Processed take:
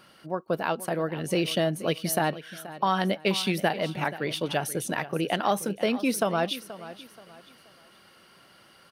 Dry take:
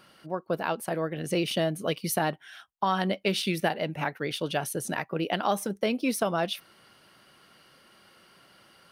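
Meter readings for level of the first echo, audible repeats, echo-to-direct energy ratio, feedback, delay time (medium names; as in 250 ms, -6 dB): -15.5 dB, 3, -15.0 dB, 33%, 479 ms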